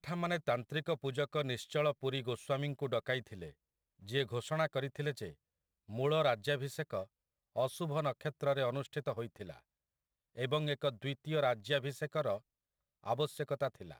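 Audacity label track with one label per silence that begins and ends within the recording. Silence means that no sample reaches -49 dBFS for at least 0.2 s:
3.510000	4.030000	silence
5.320000	5.890000	silence
7.050000	7.560000	silence
9.590000	10.370000	silence
12.380000	13.040000	silence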